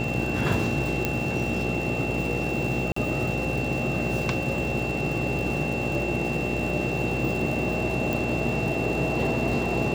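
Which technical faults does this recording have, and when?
buzz 60 Hz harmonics 14 -31 dBFS
crackle 210/s -32 dBFS
tone 2700 Hz -31 dBFS
1.05 pop -9 dBFS
2.92–2.96 gap 44 ms
8.13 pop

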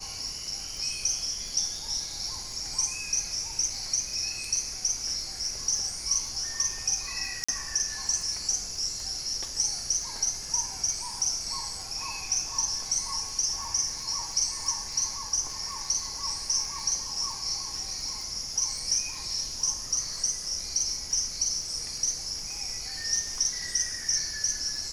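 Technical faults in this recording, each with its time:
crackle 14/s -34 dBFS
7.44–7.49 gap 45 ms

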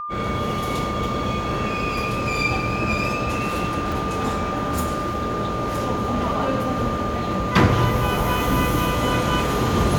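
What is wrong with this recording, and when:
tone 1200 Hz -27 dBFS
3.92 gap 3.6 ms

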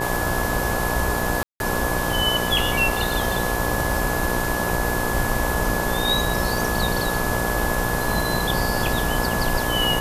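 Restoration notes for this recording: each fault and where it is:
buzz 60 Hz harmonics 18 -27 dBFS
crackle 140/s -31 dBFS
tone 1700 Hz -28 dBFS
1.43–1.6 gap 0.171 s

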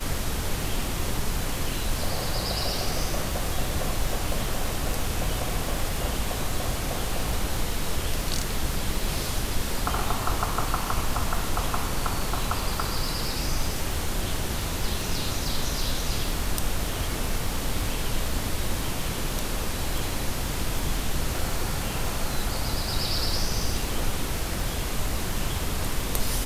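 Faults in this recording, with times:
crackle 96/s -32 dBFS

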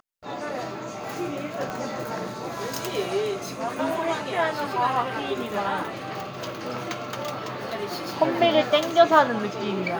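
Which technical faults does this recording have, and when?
1.7 pop -18 dBFS

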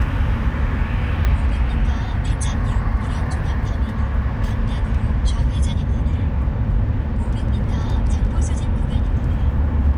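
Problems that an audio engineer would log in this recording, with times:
1.25 pop -9 dBFS

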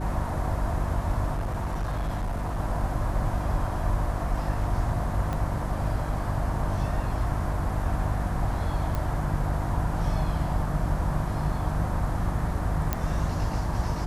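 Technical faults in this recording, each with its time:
hum 50 Hz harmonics 7 -31 dBFS
1.33–2.6 clipped -25 dBFS
5.33 pop -19 dBFS
8.95 pop
12.93 pop -11 dBFS

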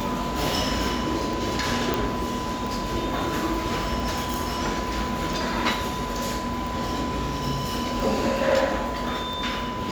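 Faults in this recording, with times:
tick
tone 1000 Hz -31 dBFS
1.94 pop
4.34 pop

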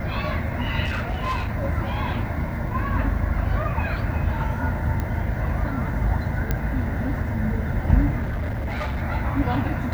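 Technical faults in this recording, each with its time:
0.84–1.5 clipped -21.5 dBFS
5 pop -15 dBFS
6.51 pop -10 dBFS
8.21–9.03 clipped -23 dBFS

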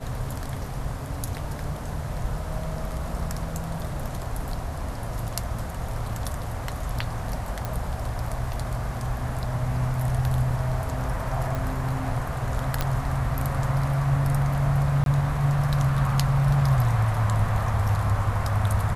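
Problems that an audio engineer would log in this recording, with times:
7.65 pop
11.55 pop
12.81 pop -9 dBFS
15.04–15.06 gap 22 ms

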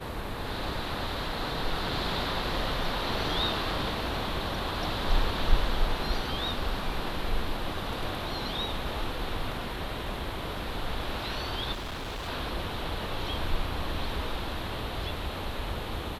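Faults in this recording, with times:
11.72–12.29 clipped -33 dBFS

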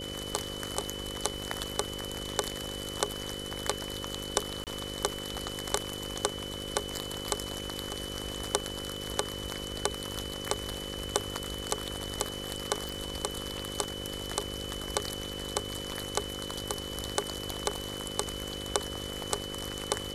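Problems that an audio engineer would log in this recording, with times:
buzz 50 Hz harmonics 11 -41 dBFS
crackle 18/s -40 dBFS
tone 3000 Hz -40 dBFS
4.64–4.67 gap 28 ms
12.89 pop

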